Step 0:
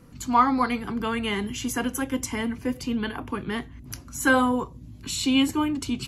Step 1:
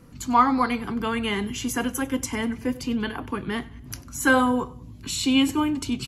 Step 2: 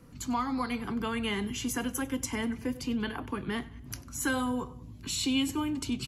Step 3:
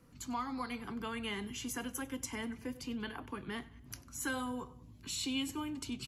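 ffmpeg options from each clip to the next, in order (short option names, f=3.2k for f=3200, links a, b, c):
-af "aecho=1:1:96|192|288:0.0841|0.0387|0.0178,volume=1dB"
-filter_complex "[0:a]acrossover=split=200|3000[a][b][c];[b]acompressor=threshold=-27dB:ratio=4[d];[a][d][c]amix=inputs=3:normalize=0,volume=-4dB"
-af "lowshelf=f=480:g=-3.5,volume=-6dB"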